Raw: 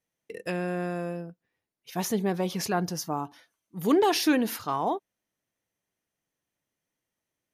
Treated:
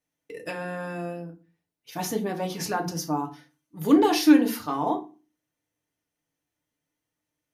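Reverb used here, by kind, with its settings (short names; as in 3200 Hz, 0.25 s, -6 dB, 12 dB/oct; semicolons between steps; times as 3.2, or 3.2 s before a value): FDN reverb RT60 0.33 s, low-frequency decay 1.45×, high-frequency decay 0.75×, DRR 2 dB; gain -1.5 dB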